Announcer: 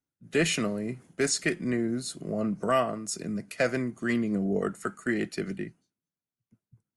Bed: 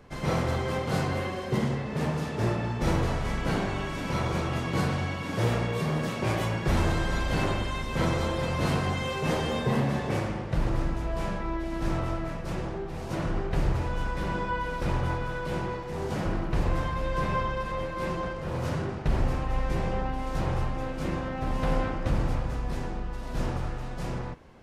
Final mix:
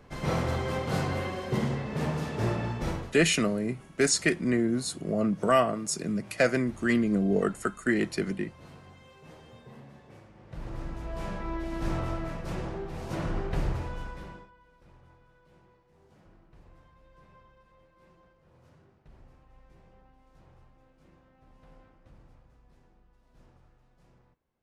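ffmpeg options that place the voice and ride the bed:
-filter_complex "[0:a]adelay=2800,volume=2.5dB[a];[1:a]volume=20dB,afade=t=out:st=2.69:d=0.45:silence=0.0794328,afade=t=in:st=10.33:d=1.3:silence=0.0841395,afade=t=out:st=13.5:d=1.01:silence=0.0421697[b];[a][b]amix=inputs=2:normalize=0"

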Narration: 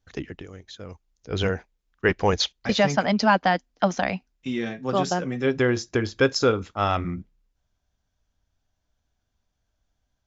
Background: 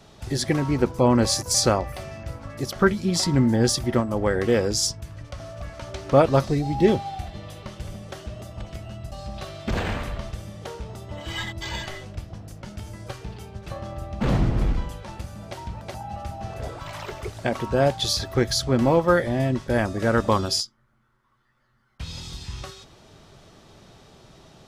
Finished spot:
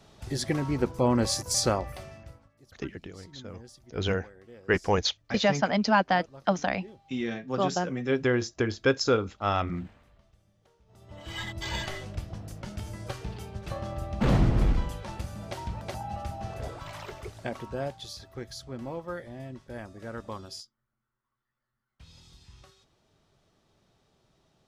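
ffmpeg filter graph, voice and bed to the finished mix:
-filter_complex "[0:a]adelay=2650,volume=-3.5dB[a];[1:a]volume=23dB,afade=t=out:st=1.91:d=0.59:silence=0.0630957,afade=t=in:st=10.86:d=0.94:silence=0.0375837,afade=t=out:st=15.92:d=2.16:silence=0.141254[b];[a][b]amix=inputs=2:normalize=0"

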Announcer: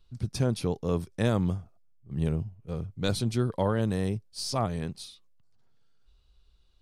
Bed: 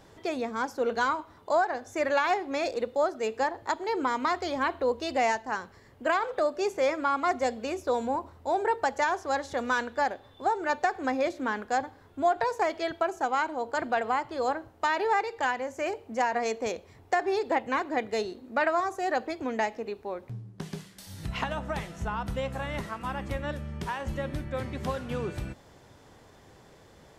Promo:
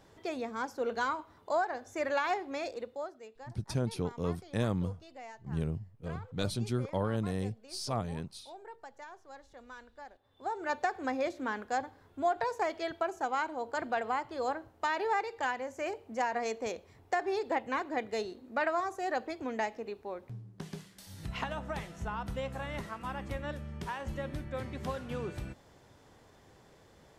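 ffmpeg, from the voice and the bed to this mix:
-filter_complex "[0:a]adelay=3350,volume=-5.5dB[a];[1:a]volume=11.5dB,afade=t=out:st=2.4:d=0.89:silence=0.149624,afade=t=in:st=10.2:d=0.53:silence=0.141254[b];[a][b]amix=inputs=2:normalize=0"

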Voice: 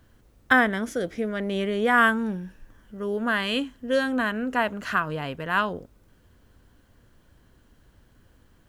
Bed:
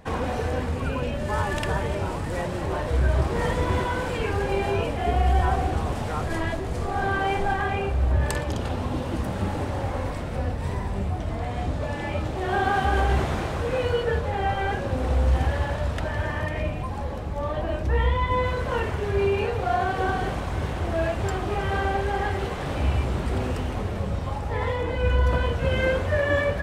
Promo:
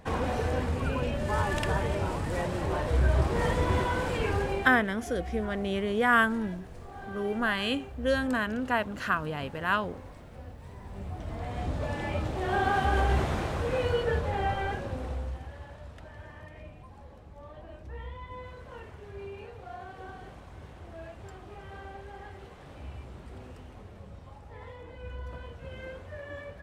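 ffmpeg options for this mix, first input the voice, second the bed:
-filter_complex "[0:a]adelay=4150,volume=-3.5dB[a];[1:a]volume=11.5dB,afade=t=out:st=4.35:d=0.46:silence=0.177828,afade=t=in:st=10.76:d=1.11:silence=0.199526,afade=t=out:st=14.38:d=1.02:silence=0.16788[b];[a][b]amix=inputs=2:normalize=0"

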